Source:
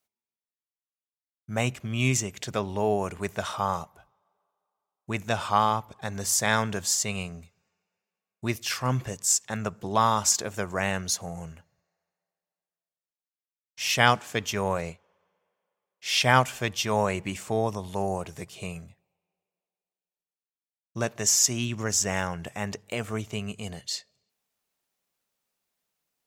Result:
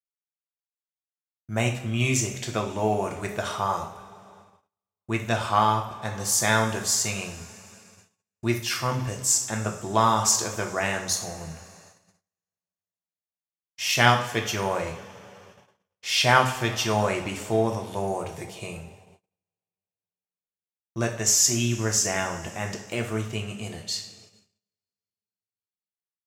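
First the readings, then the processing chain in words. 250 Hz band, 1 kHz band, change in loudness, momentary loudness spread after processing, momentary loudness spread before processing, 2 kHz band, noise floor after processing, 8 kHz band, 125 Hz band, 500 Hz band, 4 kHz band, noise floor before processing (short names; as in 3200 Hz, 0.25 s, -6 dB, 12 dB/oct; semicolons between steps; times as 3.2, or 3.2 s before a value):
+2.0 dB, +2.0 dB, +2.0 dB, 16 LU, 14 LU, +2.0 dB, under -85 dBFS, +2.0 dB, +2.5 dB, +2.0 dB, +2.0 dB, under -85 dBFS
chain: two-slope reverb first 0.51 s, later 3.9 s, from -20 dB, DRR 2 dB; gate -51 dBFS, range -35 dB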